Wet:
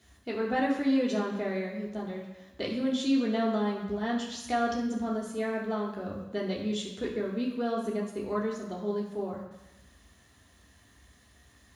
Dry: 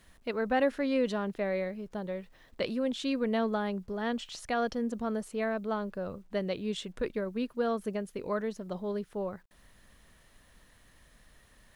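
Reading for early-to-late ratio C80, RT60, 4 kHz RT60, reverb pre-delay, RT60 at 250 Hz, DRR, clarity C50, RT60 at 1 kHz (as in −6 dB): 6.5 dB, 1.0 s, 1.1 s, 3 ms, 1.0 s, −4.0 dB, 4.5 dB, 1.1 s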